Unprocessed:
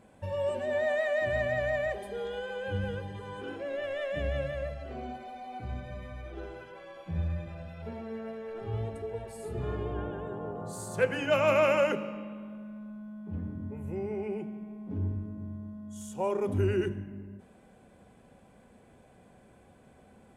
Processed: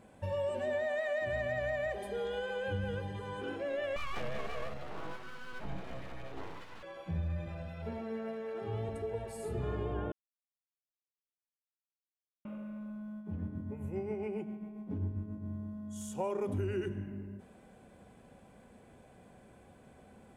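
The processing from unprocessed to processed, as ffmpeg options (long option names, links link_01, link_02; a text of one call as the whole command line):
ffmpeg -i in.wav -filter_complex "[0:a]asettb=1/sr,asplit=3[link_01][link_02][link_03];[link_01]atrim=end=3.964[link_04];[link_02]atrim=start=3.96:end=6.83,asetpts=PTS-STARTPTS,afade=type=in:duration=0.004:curve=qsin,afade=type=out:start_time=2.866:duration=0.004:curve=qsin,aeval=exprs='abs(val(0))':channel_layout=same[link_05];[link_03]atrim=start=6.826[link_06];[link_04][link_05]acrossfade=duration=0.004:curve1=hsin:curve2=qsin[link_07];[link_07][link_06]acrossfade=duration=0.004:curve1=qsin:curve2=hsin,asettb=1/sr,asplit=3[link_08][link_09][link_10];[link_08]atrim=end=7.984[link_11];[link_09]atrim=start=7.98:end=8.89,asetpts=PTS-STARTPTS,afade=type=in:duration=0.004:curve=qsin,afade=type=out:start_time=0.906:duration=0.004:curve=qsin,highpass=120[link_12];[link_10]atrim=start=8.886[link_13];[link_11][link_12]acrossfade=duration=0.004:curve1=hsin:curve2=qsin[link_14];[link_14][link_13]acrossfade=duration=0.004:curve1=qsin:curve2=hsin,asettb=1/sr,asplit=3[link_15][link_16][link_17];[link_15]atrim=end=13.174[link_18];[link_16]atrim=start=13.17:end=15.49,asetpts=PTS-STARTPTS,afade=type=in:duration=0.004:curve=qsin,afade=type=out:start_time=2.316:duration=0.004:curve=qsin,tremolo=f=7.4:d=0.48[link_19];[link_17]atrim=start=15.486[link_20];[link_18][link_19]acrossfade=duration=0.004:curve1=hsin:curve2=qsin[link_21];[link_21][link_20]acrossfade=duration=0.004:curve1=qsin:curve2=hsin,asplit=3[link_22][link_23][link_24];[link_22]atrim=end=10.12,asetpts=PTS-STARTPTS,afade=type=out:start_time=10.116:duration=0.004:curve=hsin[link_25];[link_23]atrim=start=10.12:end=12.45,asetpts=PTS-STARTPTS,volume=0[link_26];[link_24]atrim=start=12.45,asetpts=PTS-STARTPTS,afade=type=in:duration=0.004:curve=hsin[link_27];[link_25][link_26][link_27]concat=n=3:v=0:a=1,acompressor=threshold=-31dB:ratio=6" out.wav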